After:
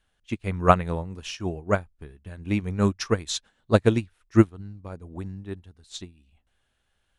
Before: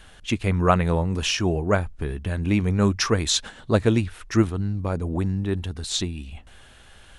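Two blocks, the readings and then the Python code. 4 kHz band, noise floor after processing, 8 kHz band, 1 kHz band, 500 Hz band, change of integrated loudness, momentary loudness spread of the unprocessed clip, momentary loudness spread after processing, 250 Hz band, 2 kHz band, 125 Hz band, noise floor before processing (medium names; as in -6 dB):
-9.0 dB, -73 dBFS, -9.0 dB, +0.5 dB, -1.0 dB, -1.5 dB, 9 LU, 19 LU, -2.5 dB, -4.5 dB, -4.5 dB, -49 dBFS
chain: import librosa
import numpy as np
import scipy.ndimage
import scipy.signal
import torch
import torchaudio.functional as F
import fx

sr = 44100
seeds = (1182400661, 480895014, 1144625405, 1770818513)

y = fx.upward_expand(x, sr, threshold_db=-32.0, expansion=2.5)
y = y * librosa.db_to_amplitude(4.0)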